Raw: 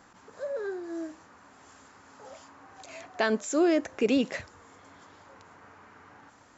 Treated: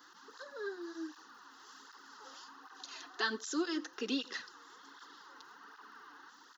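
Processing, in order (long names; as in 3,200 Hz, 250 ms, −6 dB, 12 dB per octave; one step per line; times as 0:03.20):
in parallel at 0 dB: downward compressor, threshold −36 dBFS, peak gain reduction 15 dB
on the sum: high-pass filter 290 Hz 24 dB per octave
high-shelf EQ 3,400 Hz +11.5 dB
on a send: single-tap delay 88 ms −22.5 dB
on the sum: surface crackle 83 per second −48 dBFS
phaser with its sweep stopped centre 2,300 Hz, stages 6
through-zero flanger with one copy inverted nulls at 1.3 Hz, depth 5.4 ms
level −3.5 dB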